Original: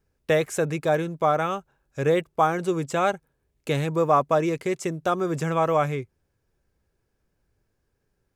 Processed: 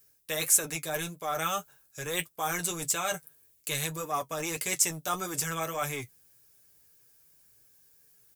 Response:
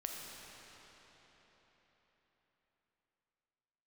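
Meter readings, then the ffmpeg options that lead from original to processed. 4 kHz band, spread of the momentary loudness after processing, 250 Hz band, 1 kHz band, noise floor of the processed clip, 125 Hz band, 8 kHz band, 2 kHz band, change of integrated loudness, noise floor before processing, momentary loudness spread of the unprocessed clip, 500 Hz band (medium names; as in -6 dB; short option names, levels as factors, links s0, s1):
+3.5 dB, 12 LU, -12.5 dB, -9.5 dB, -65 dBFS, -11.5 dB, +13.0 dB, -3.0 dB, -5.5 dB, -75 dBFS, 8 LU, -13.5 dB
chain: -filter_complex "[0:a]highpass=41,highshelf=f=8900:g=9,aecho=1:1:6.7:0.49,areverse,acompressor=threshold=0.0316:ratio=4,areverse,crystalizer=i=9:c=0,flanger=delay=9:depth=3.9:regen=-40:speed=1.7:shape=triangular,acrossover=split=640[s0][s1];[s0]asoftclip=type=hard:threshold=0.015[s2];[s2][s1]amix=inputs=2:normalize=0"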